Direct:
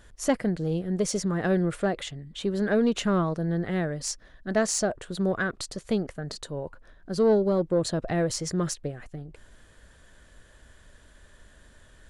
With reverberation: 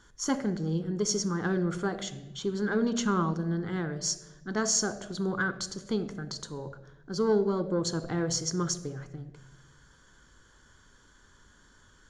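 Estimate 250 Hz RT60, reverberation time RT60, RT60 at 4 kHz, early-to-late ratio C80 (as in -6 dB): 1.4 s, 1.1 s, 0.75 s, 16.5 dB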